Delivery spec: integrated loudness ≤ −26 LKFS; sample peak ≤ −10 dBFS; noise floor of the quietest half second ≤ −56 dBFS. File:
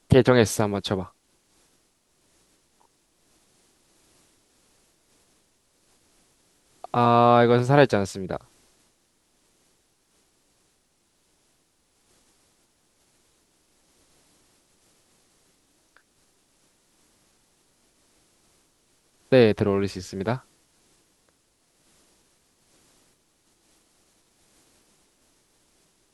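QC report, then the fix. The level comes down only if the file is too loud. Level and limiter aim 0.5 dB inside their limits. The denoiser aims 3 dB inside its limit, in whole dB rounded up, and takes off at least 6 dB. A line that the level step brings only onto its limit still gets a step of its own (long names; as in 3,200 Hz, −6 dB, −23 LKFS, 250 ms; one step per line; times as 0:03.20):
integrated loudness −21.5 LKFS: out of spec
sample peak −3.0 dBFS: out of spec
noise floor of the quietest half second −68 dBFS: in spec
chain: level −5 dB
brickwall limiter −10.5 dBFS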